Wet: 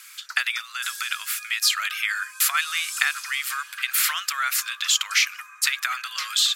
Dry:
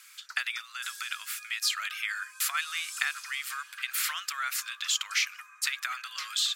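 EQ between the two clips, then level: bell 12000 Hz +3.5 dB 0.37 oct; +7.5 dB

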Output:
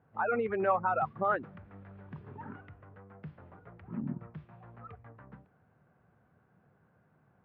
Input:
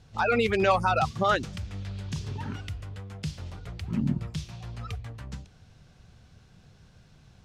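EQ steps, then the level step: HPF 130 Hz 12 dB/oct; LPF 1600 Hz 24 dB/oct; low shelf 240 Hz -7.5 dB; -4.0 dB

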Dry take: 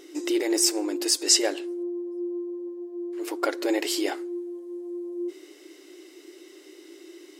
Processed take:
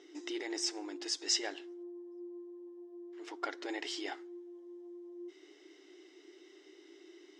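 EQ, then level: speaker cabinet 280–5400 Hz, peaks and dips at 330 Hz -4 dB, 550 Hz -10 dB, 1100 Hz -5 dB, 1500 Hz -3 dB, 2500 Hz -7 dB, 4400 Hz -9 dB; dynamic EQ 430 Hz, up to -6 dB, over -45 dBFS, Q 0.87; -4.5 dB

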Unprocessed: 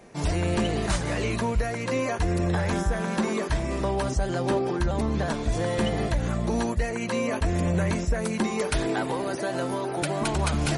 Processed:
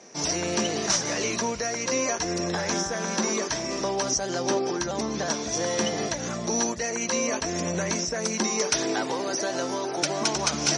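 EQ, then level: HPF 220 Hz 12 dB/oct; synth low-pass 5800 Hz, resonance Q 9.7; 0.0 dB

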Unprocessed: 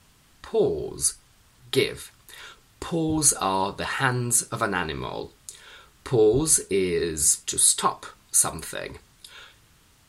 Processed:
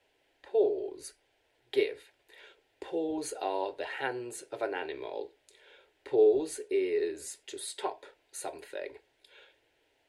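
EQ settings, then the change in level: three-band isolator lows -23 dB, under 270 Hz, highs -22 dB, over 2800 Hz; fixed phaser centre 490 Hz, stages 4; -2.0 dB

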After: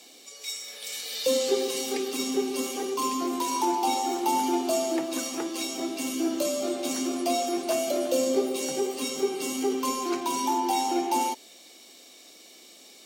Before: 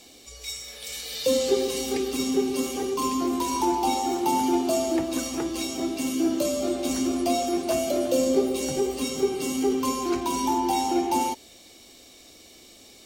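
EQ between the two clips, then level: HPF 170 Hz 24 dB/oct; low shelf 260 Hz -9 dB; 0.0 dB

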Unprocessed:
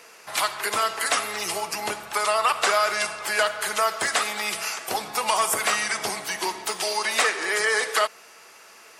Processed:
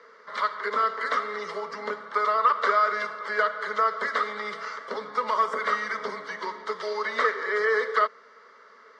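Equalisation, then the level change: speaker cabinet 200–3900 Hz, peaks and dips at 240 Hz +4 dB, 420 Hz +9 dB, 1200 Hz +5 dB, 2100 Hz +9 dB; fixed phaser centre 510 Hz, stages 8; -2.5 dB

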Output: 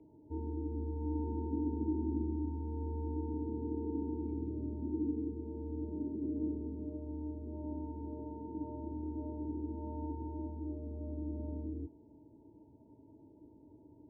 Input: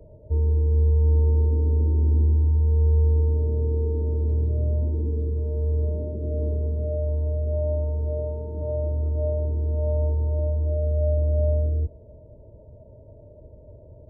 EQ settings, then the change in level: vowel filter u; +6.5 dB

